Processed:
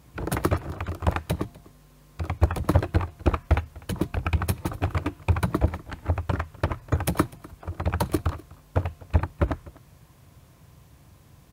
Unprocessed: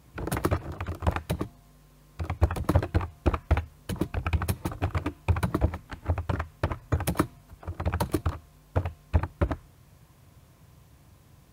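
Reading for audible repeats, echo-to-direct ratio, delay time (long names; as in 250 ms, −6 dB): 1, −22.0 dB, 249 ms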